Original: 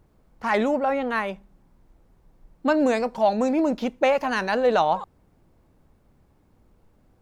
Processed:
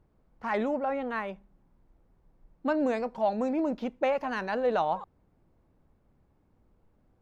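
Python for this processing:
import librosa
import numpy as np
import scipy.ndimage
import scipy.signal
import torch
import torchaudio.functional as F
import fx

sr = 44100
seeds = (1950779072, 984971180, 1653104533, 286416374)

y = fx.high_shelf(x, sr, hz=4200.0, db=-11.5)
y = F.gain(torch.from_numpy(y), -6.5).numpy()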